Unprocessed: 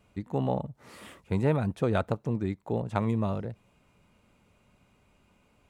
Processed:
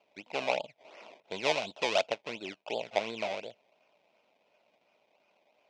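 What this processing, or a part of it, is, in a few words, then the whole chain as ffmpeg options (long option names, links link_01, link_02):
circuit-bent sampling toy: -filter_complex "[0:a]acrusher=samples=22:mix=1:aa=0.000001:lfo=1:lforange=22:lforate=2.8,highpass=590,equalizer=frequency=630:width_type=q:width=4:gain=8,equalizer=frequency=1200:width_type=q:width=4:gain=-9,equalizer=frequency=1700:width_type=q:width=4:gain=-9,equalizer=frequency=2500:width_type=q:width=4:gain=8,equalizer=frequency=4600:width_type=q:width=4:gain=-3,lowpass=frequency=5200:width=0.5412,lowpass=frequency=5200:width=1.3066,asettb=1/sr,asplit=3[link_01][link_02][link_03];[link_01]atrim=end=1.204[link_04];[link_02]atrim=start=1.2:end=2.07,asetpts=PTS-STARTPTS,afade=type=in:duration=0.004:curve=qsin,afade=type=out:start_time=0.866:duration=0.004:curve=qsin,adynamicequalizer=threshold=0.00562:dfrequency=2900:dqfactor=0.7:tfrequency=2900:tqfactor=0.7:attack=5:release=100:ratio=0.375:range=3:mode=boostabove:tftype=highshelf[link_05];[link_03]atrim=start=2.066[link_06];[link_04][link_05]acrossfade=duration=0.004:curve1=hsin:curve2=qsin[link_07];[link_07][link_06]acrossfade=duration=0.004:curve1=qsin:curve2=hsin"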